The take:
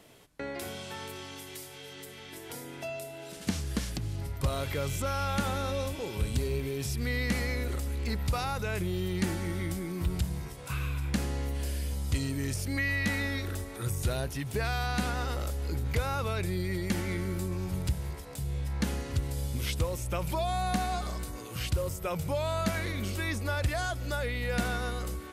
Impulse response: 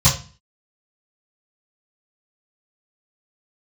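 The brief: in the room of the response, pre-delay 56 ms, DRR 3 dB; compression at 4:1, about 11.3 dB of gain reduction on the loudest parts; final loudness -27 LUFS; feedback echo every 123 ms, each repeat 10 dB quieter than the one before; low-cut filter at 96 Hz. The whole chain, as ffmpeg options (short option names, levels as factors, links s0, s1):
-filter_complex "[0:a]highpass=96,acompressor=threshold=0.0112:ratio=4,aecho=1:1:123|246|369|492:0.316|0.101|0.0324|0.0104,asplit=2[s0][s1];[1:a]atrim=start_sample=2205,adelay=56[s2];[s1][s2]afir=irnorm=-1:irlink=0,volume=0.0794[s3];[s0][s3]amix=inputs=2:normalize=0,volume=2"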